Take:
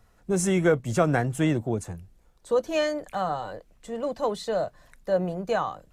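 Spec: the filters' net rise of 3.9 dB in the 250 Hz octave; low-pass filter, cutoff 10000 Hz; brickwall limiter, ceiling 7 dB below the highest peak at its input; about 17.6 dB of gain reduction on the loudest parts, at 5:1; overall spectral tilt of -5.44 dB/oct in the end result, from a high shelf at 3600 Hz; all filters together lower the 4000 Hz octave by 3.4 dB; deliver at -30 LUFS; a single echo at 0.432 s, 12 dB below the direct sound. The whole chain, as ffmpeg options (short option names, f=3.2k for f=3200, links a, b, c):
-af "lowpass=10k,equalizer=f=250:t=o:g=6,highshelf=f=3.6k:g=3,equalizer=f=4k:t=o:g=-6.5,acompressor=threshold=-36dB:ratio=5,alimiter=level_in=7dB:limit=-24dB:level=0:latency=1,volume=-7dB,aecho=1:1:432:0.251,volume=11dB"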